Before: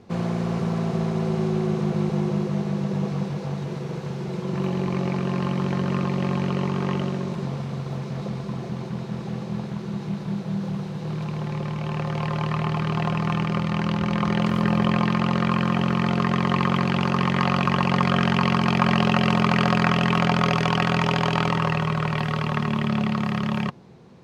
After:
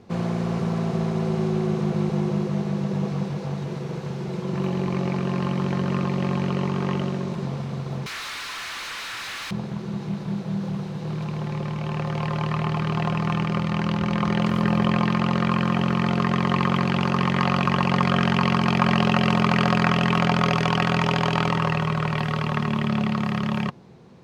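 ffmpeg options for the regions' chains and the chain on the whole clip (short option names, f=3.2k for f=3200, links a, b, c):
-filter_complex "[0:a]asettb=1/sr,asplit=3[a][b][c];[a]atrim=end=8.064[d];[b]atrim=start=8.06:end=9.51,asetpts=PTS-STARTPTS,afade=t=in:d=0.004:c=qsin,afade=t=out:st=1.446:d=0.004:c=qsin,highpass=f=1.4k:w=0.5412,highpass=f=1.4k:w=1.3066,asplit=2[e][f];[f]highpass=f=720:p=1,volume=34dB,asoftclip=type=tanh:threshold=-25dB[g];[e][g]amix=inputs=2:normalize=0,lowpass=f=4.9k:p=1,volume=-6dB[h];[c]atrim=start=9.506[i];[d][h]acrossfade=d=0.004:c1=hsin:c2=qsin[j];[j][i]acrossfade=d=0.004:c1=qsin:c2=hsin"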